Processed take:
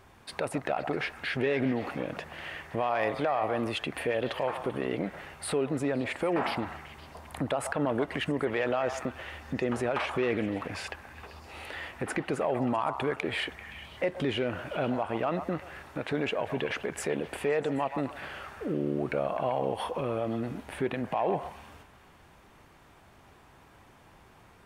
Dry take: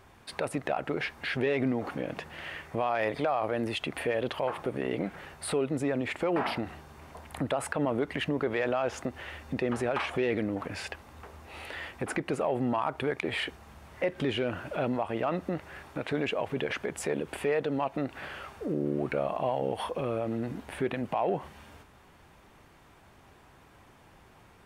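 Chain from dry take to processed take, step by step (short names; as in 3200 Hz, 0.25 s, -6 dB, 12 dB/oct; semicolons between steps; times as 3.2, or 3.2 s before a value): delay with a stepping band-pass 0.13 s, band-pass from 880 Hz, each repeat 0.7 oct, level -6.5 dB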